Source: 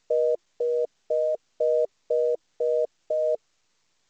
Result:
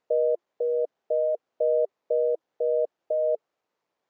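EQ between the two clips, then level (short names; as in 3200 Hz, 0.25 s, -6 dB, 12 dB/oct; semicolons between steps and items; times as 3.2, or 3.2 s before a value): band-pass 580 Hz, Q 1; 0.0 dB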